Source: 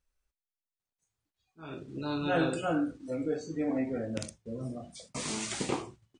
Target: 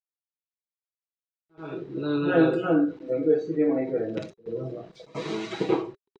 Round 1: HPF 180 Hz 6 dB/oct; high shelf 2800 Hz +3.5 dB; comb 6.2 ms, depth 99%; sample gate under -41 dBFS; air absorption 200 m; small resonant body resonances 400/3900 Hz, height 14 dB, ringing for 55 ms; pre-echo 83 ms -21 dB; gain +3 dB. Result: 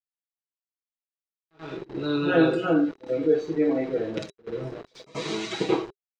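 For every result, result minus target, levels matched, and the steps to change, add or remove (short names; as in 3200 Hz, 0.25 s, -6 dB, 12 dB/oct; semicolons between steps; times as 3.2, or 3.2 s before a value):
sample gate: distortion +14 dB; 4000 Hz band +5.5 dB
change: sample gate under -52.5 dBFS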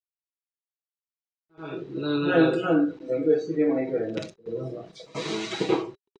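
4000 Hz band +5.5 dB
change: high shelf 2800 Hz -6 dB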